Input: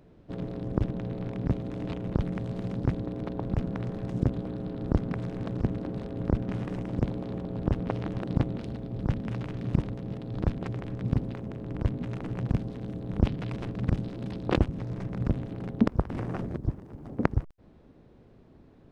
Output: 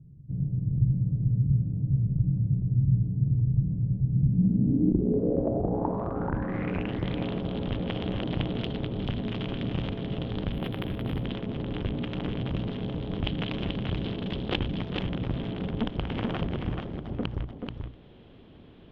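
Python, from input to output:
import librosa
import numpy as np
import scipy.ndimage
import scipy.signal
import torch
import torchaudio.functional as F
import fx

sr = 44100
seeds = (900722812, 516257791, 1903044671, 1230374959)

p1 = fx.hum_notches(x, sr, base_hz=60, count=2)
p2 = fx.over_compress(p1, sr, threshold_db=-34.0, ratio=-1.0)
p3 = p1 + (p2 * 10.0 ** (-2.5 / 20.0))
p4 = fx.tube_stage(p3, sr, drive_db=22.0, bias=0.65)
p5 = fx.filter_sweep_lowpass(p4, sr, from_hz=130.0, to_hz=3200.0, start_s=4.11, end_s=6.99, q=5.8)
p6 = p5 + fx.echo_single(p5, sr, ms=433, db=-5.0, dry=0)
y = fx.resample_linear(p6, sr, factor=3, at=(10.52, 11.25))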